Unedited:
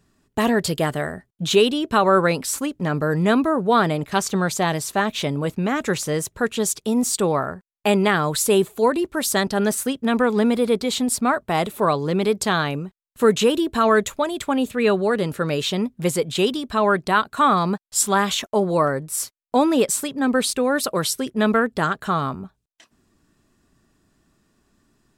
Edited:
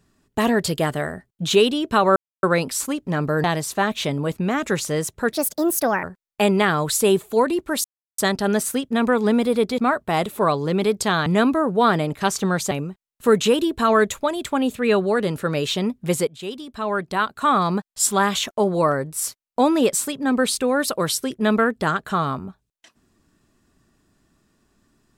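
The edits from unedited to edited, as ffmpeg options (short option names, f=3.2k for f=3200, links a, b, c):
-filter_complex "[0:a]asplit=10[a][b][c][d][e][f][g][h][i][j];[a]atrim=end=2.16,asetpts=PTS-STARTPTS,afade=t=out:st=2.156:d=0.004:c=hsin,apad=pad_dur=0.27[k];[b]atrim=start=2.16:end=3.172,asetpts=PTS-STARTPTS,afade=t=in:d=0.004:c=hsin[l];[c]atrim=start=4.618:end=6.504[m];[d]atrim=start=6.5:end=7.49,asetpts=PTS-STARTPTS,asetrate=61299,aresample=44100,atrim=end_sample=31409,asetpts=PTS-STARTPTS[n];[e]atrim=start=7.486:end=9.3,asetpts=PTS-STARTPTS,afade=t=out:st=1.81:d=0.004:c=hsin,apad=pad_dur=0.34[o];[f]atrim=start=9.3:end=10.902,asetpts=PTS-STARTPTS,afade=t=in:d=0.004:c=hsin[p];[g]atrim=start=11.188:end=12.672[q];[h]atrim=start=3.168:end=4.622[r];[i]atrim=start=12.668:end=16.23,asetpts=PTS-STARTPTS,afade=t=out:st=3.558:d=0.004:c=hsin:silence=0.158489[s];[j]atrim=start=16.23,asetpts=PTS-STARTPTS,afade=t=in:d=1.49:silence=0.158489[t];[k][l]concat=n=2:v=0:a=1[u];[u][m]acrossfade=d=0.004:c1=hsin:c2=hsin[v];[v][n]acrossfade=d=0.004:c1=hsin:c2=hsin[w];[o][p]concat=n=2:v=0:a=1[x];[w][x]acrossfade=d=0.004:c1=hsin:c2=hsin[y];[y][q]acrossfade=d=0.004:c1=hsin:c2=hsin[z];[z][r]acrossfade=d=0.004:c1=hsin:c2=hsin[aa];[s][t]concat=n=2:v=0:a=1[ab];[aa][ab]acrossfade=d=0.004:c1=hsin:c2=hsin"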